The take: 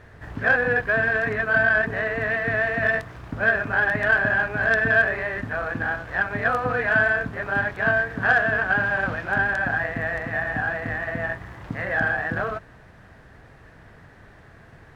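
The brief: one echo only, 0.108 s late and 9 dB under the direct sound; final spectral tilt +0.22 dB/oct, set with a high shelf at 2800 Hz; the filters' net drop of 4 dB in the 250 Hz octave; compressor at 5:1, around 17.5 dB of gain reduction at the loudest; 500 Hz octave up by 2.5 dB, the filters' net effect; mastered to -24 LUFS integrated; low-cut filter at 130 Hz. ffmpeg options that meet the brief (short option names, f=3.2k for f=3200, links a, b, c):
-af "highpass=130,equalizer=f=250:t=o:g=-5.5,equalizer=f=500:t=o:g=5,highshelf=f=2.8k:g=-8,acompressor=threshold=-36dB:ratio=5,aecho=1:1:108:0.355,volume=13dB"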